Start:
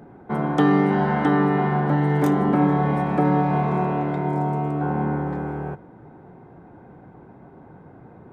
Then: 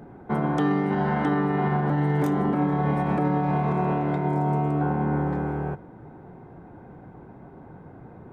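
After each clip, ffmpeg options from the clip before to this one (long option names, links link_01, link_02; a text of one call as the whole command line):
ffmpeg -i in.wav -af "lowshelf=frequency=72:gain=6.5,alimiter=limit=-15.5dB:level=0:latency=1:release=81" out.wav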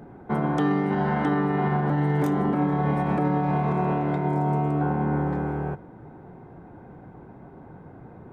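ffmpeg -i in.wav -af anull out.wav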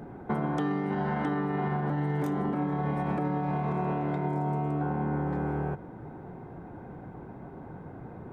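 ffmpeg -i in.wav -af "acompressor=threshold=-28dB:ratio=6,volume=1.5dB" out.wav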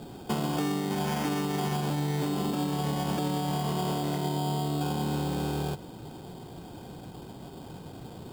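ffmpeg -i in.wav -af "acrusher=samples=11:mix=1:aa=0.000001" out.wav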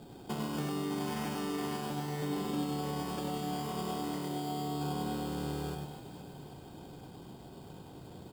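ffmpeg -i in.wav -af "aecho=1:1:100|250|475|812.5|1319:0.631|0.398|0.251|0.158|0.1,volume=-8dB" out.wav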